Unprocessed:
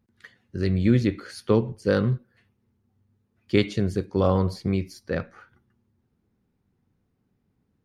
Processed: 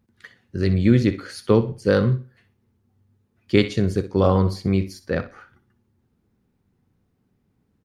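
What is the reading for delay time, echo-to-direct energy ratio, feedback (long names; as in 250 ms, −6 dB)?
62 ms, −14.5 dB, 24%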